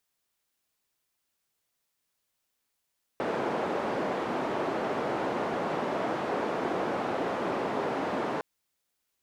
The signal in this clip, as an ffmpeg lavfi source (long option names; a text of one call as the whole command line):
ffmpeg -f lavfi -i "anoisesrc=color=white:duration=5.21:sample_rate=44100:seed=1,highpass=frequency=240,lowpass=frequency=720,volume=-9.6dB" out.wav